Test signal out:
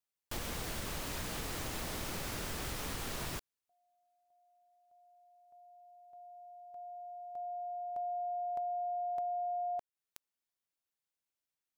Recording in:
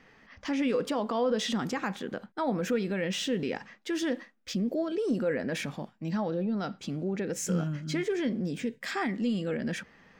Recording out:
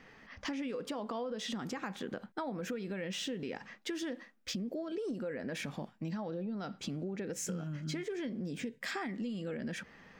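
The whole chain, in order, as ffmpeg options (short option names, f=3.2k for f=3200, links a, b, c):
-af "acompressor=threshold=-36dB:ratio=12,volume=1dB"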